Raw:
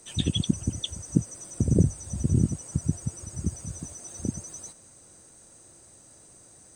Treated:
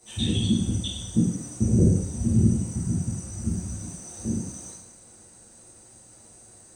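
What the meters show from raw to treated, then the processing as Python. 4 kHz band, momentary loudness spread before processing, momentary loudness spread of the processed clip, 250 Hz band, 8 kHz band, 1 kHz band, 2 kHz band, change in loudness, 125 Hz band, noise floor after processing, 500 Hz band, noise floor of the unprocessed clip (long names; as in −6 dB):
+1.5 dB, 14 LU, 15 LU, +4.5 dB, +1.0 dB, +3.0 dB, can't be measured, +3.0 dB, +2.5 dB, −52 dBFS, +2.5 dB, −54 dBFS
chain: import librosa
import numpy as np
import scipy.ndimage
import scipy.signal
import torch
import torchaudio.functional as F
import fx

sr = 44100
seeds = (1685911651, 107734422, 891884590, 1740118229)

y = fx.rev_plate(x, sr, seeds[0], rt60_s=0.84, hf_ratio=0.95, predelay_ms=0, drr_db=-10.0)
y = y * 10.0 ** (-8.0 / 20.0)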